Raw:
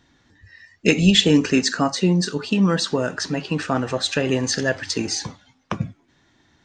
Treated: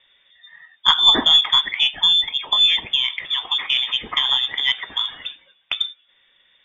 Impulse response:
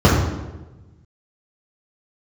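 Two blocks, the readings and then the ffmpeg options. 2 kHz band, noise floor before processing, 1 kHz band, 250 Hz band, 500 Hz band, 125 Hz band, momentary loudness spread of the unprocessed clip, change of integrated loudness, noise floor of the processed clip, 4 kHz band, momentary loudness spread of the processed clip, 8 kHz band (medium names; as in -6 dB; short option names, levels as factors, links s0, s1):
+0.5 dB, -62 dBFS, +2.0 dB, -18.0 dB, -16.0 dB, under -20 dB, 14 LU, +4.0 dB, -61 dBFS, +11.0 dB, 12 LU, under -10 dB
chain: -af "lowpass=f=3100:t=q:w=0.5098,lowpass=f=3100:t=q:w=0.6013,lowpass=f=3100:t=q:w=0.9,lowpass=f=3100:t=q:w=2.563,afreqshift=-3700,aeval=exprs='0.708*(cos(1*acos(clip(val(0)/0.708,-1,1)))-cos(1*PI/2))+0.0447*(cos(2*acos(clip(val(0)/0.708,-1,1)))-cos(2*PI/2))':c=same,volume=1.19"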